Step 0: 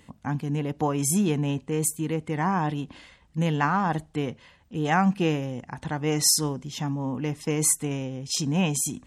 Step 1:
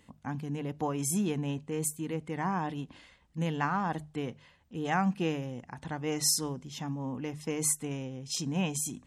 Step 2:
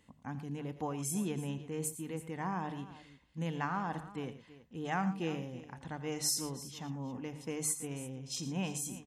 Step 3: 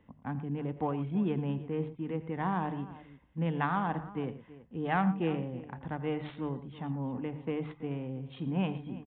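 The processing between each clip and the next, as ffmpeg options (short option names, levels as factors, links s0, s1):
-af "bandreject=f=50:t=h:w=6,bandreject=f=100:t=h:w=6,bandreject=f=150:t=h:w=6,volume=0.473"
-af "aecho=1:1:84|114|329:0.168|0.188|0.15,volume=0.531"
-filter_complex "[0:a]acrossover=split=230[s0][s1];[s1]adynamicsmooth=sensitivity=3.5:basefreq=1900[s2];[s0][s2]amix=inputs=2:normalize=0,aresample=8000,aresample=44100,volume=1.88"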